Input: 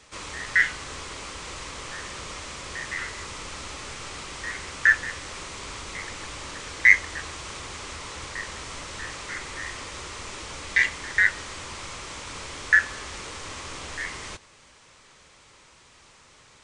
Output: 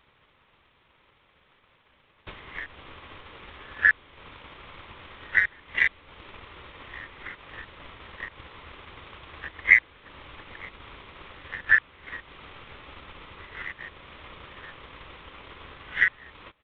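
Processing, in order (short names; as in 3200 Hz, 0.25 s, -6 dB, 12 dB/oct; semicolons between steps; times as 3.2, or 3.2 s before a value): whole clip reversed; downsampling 8000 Hz; transient shaper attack +9 dB, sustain -7 dB; gain -7.5 dB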